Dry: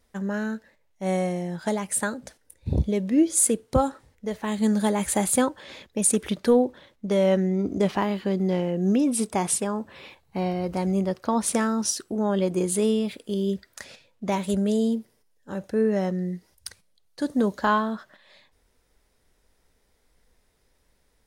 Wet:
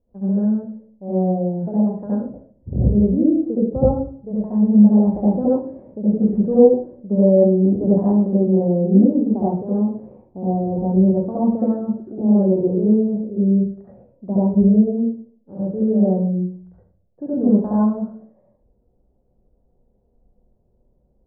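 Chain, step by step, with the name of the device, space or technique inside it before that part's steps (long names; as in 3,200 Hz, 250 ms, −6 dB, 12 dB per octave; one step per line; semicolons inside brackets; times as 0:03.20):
next room (low-pass filter 650 Hz 24 dB per octave; convolution reverb RT60 0.50 s, pre-delay 66 ms, DRR −8.5 dB)
level −3.5 dB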